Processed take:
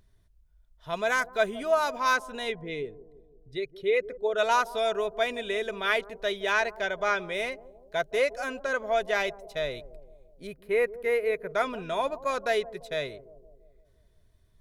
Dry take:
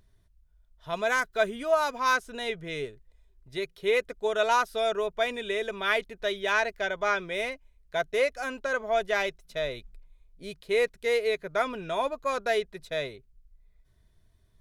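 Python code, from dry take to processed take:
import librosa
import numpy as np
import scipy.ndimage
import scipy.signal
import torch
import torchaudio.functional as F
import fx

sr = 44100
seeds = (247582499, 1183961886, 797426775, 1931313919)

p1 = fx.envelope_sharpen(x, sr, power=1.5, at=(2.51, 4.37), fade=0.02)
p2 = fx.band_shelf(p1, sr, hz=5100.0, db=-13.5, octaves=1.7, at=(10.47, 11.49))
y = p2 + fx.echo_bbd(p2, sr, ms=170, stages=1024, feedback_pct=55, wet_db=-16.5, dry=0)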